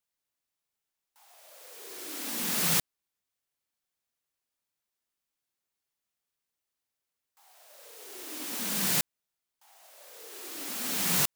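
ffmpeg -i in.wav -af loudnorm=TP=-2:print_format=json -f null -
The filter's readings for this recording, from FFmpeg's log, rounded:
"input_i" : "-28.7",
"input_tp" : "-12.1",
"input_lra" : "3.8",
"input_thresh" : "-41.1",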